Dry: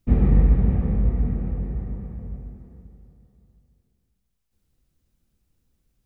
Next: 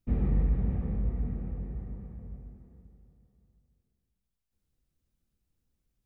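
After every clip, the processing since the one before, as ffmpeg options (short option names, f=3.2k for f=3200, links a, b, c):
-af "asoftclip=type=tanh:threshold=-6.5dB,volume=-9dB"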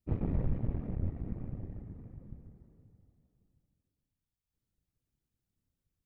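-af "afftfilt=real='hypot(re,im)*cos(2*PI*random(0))':imag='hypot(re,im)*sin(2*PI*random(1))':win_size=512:overlap=0.75,aeval=exprs='0.0891*(cos(1*acos(clip(val(0)/0.0891,-1,1)))-cos(1*PI/2))+0.0141*(cos(6*acos(clip(val(0)/0.0891,-1,1)))-cos(6*PI/2))':c=same"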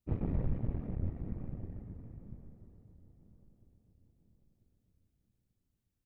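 -filter_complex "[0:a]asplit=2[a][b];[b]adelay=994,lowpass=f=1.6k:p=1,volume=-19dB,asplit=2[c][d];[d]adelay=994,lowpass=f=1.6k:p=1,volume=0.45,asplit=2[e][f];[f]adelay=994,lowpass=f=1.6k:p=1,volume=0.45,asplit=2[g][h];[h]adelay=994,lowpass=f=1.6k:p=1,volume=0.45[i];[a][c][e][g][i]amix=inputs=5:normalize=0,volume=-1.5dB"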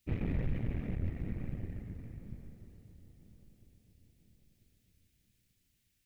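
-af "highshelf=f=1.5k:t=q:w=1.5:g=11,alimiter=level_in=3.5dB:limit=-24dB:level=0:latency=1:release=20,volume=-3.5dB,volume=2.5dB"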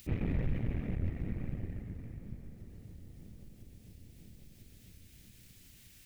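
-af "acompressor=mode=upward:threshold=-42dB:ratio=2.5,volume=1dB"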